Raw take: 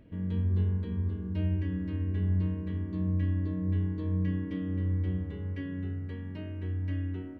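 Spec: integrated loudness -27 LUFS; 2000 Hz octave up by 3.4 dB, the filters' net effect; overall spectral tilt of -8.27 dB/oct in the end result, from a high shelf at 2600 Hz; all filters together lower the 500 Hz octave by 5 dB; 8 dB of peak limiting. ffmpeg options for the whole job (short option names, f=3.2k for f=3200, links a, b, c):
-af "equalizer=f=500:t=o:g=-7,equalizer=f=2k:t=o:g=7.5,highshelf=f=2.6k:g=-8.5,volume=8.5dB,alimiter=limit=-19dB:level=0:latency=1"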